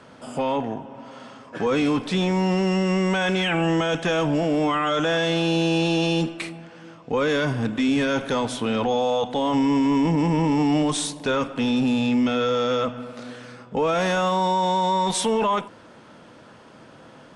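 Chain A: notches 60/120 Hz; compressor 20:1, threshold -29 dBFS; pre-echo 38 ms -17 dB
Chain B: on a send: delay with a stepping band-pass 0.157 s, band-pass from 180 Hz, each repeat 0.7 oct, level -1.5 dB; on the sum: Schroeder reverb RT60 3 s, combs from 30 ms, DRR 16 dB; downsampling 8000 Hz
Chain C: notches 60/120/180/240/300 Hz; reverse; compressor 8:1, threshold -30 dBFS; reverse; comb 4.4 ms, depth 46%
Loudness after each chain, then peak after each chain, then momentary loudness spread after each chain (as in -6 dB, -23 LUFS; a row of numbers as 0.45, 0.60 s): -33.5, -21.5, -32.5 LUFS; -16.5, -8.0, -18.5 dBFS; 10, 12, 11 LU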